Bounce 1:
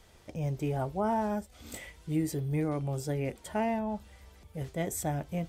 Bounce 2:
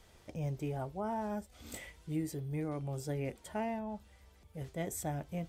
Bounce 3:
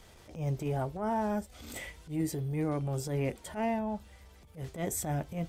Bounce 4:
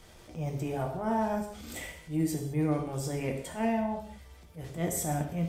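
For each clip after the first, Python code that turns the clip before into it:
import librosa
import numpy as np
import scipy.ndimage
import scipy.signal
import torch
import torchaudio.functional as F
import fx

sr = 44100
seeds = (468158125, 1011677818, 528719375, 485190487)

y1 = fx.rider(x, sr, range_db=3, speed_s=0.5)
y1 = y1 * 10.0 ** (-5.5 / 20.0)
y2 = fx.transient(y1, sr, attack_db=-12, sustain_db=0)
y2 = y2 * 10.0 ** (6.5 / 20.0)
y3 = fx.rev_gated(y2, sr, seeds[0], gate_ms=240, shape='falling', drr_db=2.0)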